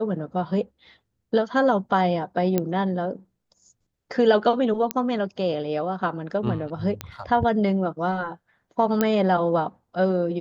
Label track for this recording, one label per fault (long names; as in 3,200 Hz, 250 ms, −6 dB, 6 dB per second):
2.580000	2.580000	click −9 dBFS
4.910000	4.910000	click −7 dBFS
7.010000	7.010000	click −13 dBFS
9.010000	9.010000	click −7 dBFS